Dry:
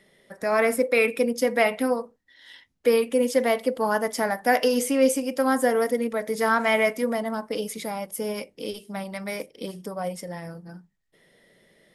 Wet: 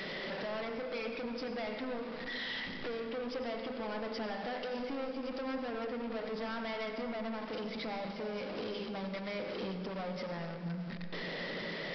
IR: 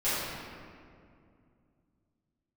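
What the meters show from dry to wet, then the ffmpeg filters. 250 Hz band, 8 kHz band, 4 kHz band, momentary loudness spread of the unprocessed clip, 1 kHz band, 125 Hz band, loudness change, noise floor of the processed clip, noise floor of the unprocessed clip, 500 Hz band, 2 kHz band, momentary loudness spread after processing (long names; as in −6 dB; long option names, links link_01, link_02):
−11.5 dB, below −30 dB, −6.5 dB, 13 LU, −14.5 dB, can't be measured, −14.5 dB, −42 dBFS, −67 dBFS, −15.0 dB, −13.0 dB, 2 LU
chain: -filter_complex "[0:a]aeval=exprs='val(0)+0.5*0.0237*sgn(val(0))':channel_layout=same,lowshelf=frequency=130:width_type=q:width=1.5:gain=-10,bandreject=frequency=50:width_type=h:width=6,bandreject=frequency=100:width_type=h:width=6,bandreject=frequency=150:width_type=h:width=6,bandreject=frequency=200:width_type=h:width=6,bandreject=frequency=250:width_type=h:width=6,bandreject=frequency=300:width_type=h:width=6,bandreject=frequency=350:width_type=h:width=6,bandreject=frequency=400:width_type=h:width=6,bandreject=frequency=450:width_type=h:width=6,acompressor=threshold=-34dB:ratio=3,aresample=11025,asoftclip=type=tanh:threshold=-38dB,aresample=44100,asplit=2[link_01][link_02];[1:a]atrim=start_sample=2205,adelay=80[link_03];[link_02][link_03]afir=irnorm=-1:irlink=0,volume=-17.5dB[link_04];[link_01][link_04]amix=inputs=2:normalize=0,volume=1dB"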